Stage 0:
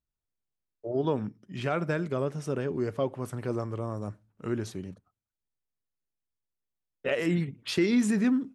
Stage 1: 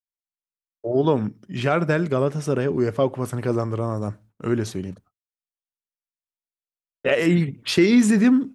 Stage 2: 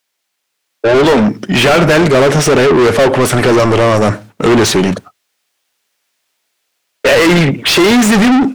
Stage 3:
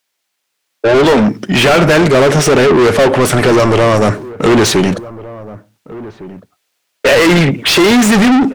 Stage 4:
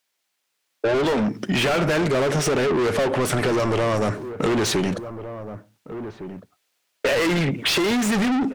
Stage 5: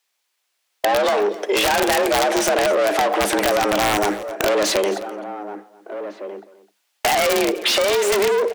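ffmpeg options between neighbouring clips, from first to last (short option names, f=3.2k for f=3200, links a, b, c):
-af "agate=range=-33dB:threshold=-53dB:ratio=3:detection=peak,volume=8.5dB"
-filter_complex "[0:a]equalizer=f=1.1k:w=1.5:g=-4,asplit=2[a][b];[b]highpass=f=720:p=1,volume=38dB,asoftclip=type=tanh:threshold=-4.5dB[c];[a][c]amix=inputs=2:normalize=0,lowpass=f=4k:p=1,volume=-6dB,dynaudnorm=f=470:g=3:m=4.5dB"
-filter_complex "[0:a]asplit=2[a][b];[b]adelay=1458,volume=-18dB,highshelf=f=4k:g=-32.8[c];[a][c]amix=inputs=2:normalize=0"
-af "acompressor=threshold=-15dB:ratio=5,volume=-5dB"
-af "afreqshift=200,aeval=exprs='(mod(4.22*val(0)+1,2)-1)/4.22':c=same,aecho=1:1:257:0.133,volume=2.5dB"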